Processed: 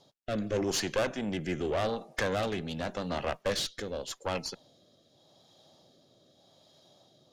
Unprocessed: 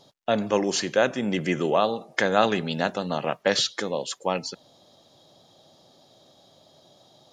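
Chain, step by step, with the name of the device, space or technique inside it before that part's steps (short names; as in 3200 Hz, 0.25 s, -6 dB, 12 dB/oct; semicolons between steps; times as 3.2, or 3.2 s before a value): overdriven rotary cabinet (tube stage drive 22 dB, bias 0.65; rotary speaker horn 0.85 Hz)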